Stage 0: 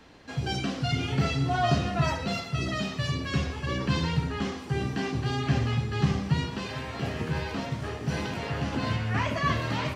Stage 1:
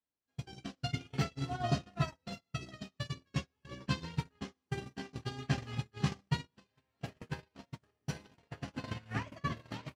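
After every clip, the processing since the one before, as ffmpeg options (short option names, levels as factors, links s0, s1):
-filter_complex "[0:a]highshelf=f=5600:g=6.5,acrossover=split=110|510[s0][s1][s2];[s0]acompressor=threshold=0.00794:ratio=4[s3];[s1]acompressor=threshold=0.0316:ratio=4[s4];[s2]acompressor=threshold=0.02:ratio=4[s5];[s3][s4][s5]amix=inputs=3:normalize=0,agate=range=0.00447:threshold=0.0398:ratio=16:detection=peak,volume=1.12"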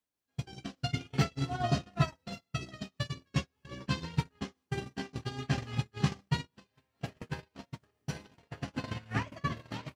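-af "tremolo=f=5:d=0.37,volume=1.78"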